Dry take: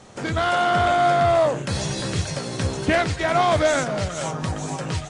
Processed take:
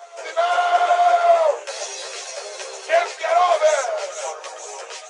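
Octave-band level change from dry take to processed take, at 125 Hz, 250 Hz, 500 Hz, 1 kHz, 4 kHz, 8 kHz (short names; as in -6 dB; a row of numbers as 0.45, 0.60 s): under -40 dB, under -20 dB, +2.5 dB, +2.5 dB, -1.0 dB, +1.5 dB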